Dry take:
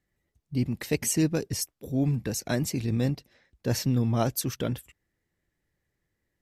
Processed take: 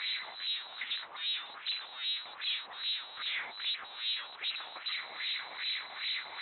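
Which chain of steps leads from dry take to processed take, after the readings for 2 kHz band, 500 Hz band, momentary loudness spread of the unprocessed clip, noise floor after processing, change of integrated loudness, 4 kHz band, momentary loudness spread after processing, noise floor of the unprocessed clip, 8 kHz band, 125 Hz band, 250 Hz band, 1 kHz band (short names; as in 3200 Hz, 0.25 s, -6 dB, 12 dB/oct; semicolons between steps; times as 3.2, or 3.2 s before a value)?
+3.5 dB, -24.5 dB, 8 LU, -49 dBFS, -7.0 dB, +8.5 dB, 2 LU, -81 dBFS, under -40 dB, under -40 dB, under -40 dB, -5.5 dB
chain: infinite clipping; inverted band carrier 4000 Hz; LFO band-pass sine 2.5 Hz 790–3100 Hz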